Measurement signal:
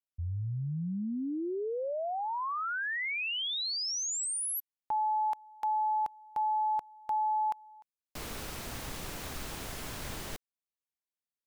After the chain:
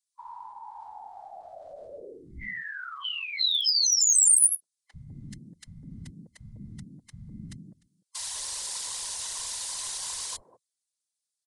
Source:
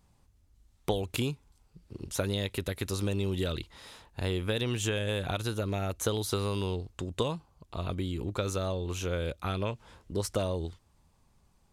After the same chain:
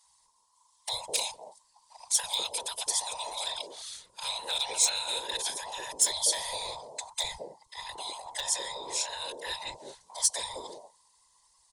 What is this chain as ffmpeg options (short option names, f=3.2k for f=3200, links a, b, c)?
-filter_complex "[0:a]afftfilt=real='real(if(between(b,1,1008),(2*floor((b-1)/48)+1)*48-b,b),0)':imag='imag(if(between(b,1,1008),(2*floor((b-1)/48)+1)*48-b,b),0)*if(between(b,1,1008),-1,1)':win_size=2048:overlap=0.75,lowshelf=f=410:t=q:w=3:g=-7.5,afftfilt=real='hypot(re,im)*cos(2*PI*random(0))':imag='hypot(re,im)*sin(2*PI*random(1))':win_size=512:overlap=0.75,aresample=22050,aresample=44100,equalizer=f=620:t=o:w=2.5:g=-13.5,volume=33.5dB,asoftclip=hard,volume=-33.5dB,acrossover=split=160|660[a][b][c];[a]adelay=40[d];[b]adelay=200[e];[d][e][c]amix=inputs=3:normalize=0,aexciter=amount=3.8:drive=5.3:freq=3.6k,volume=7.5dB"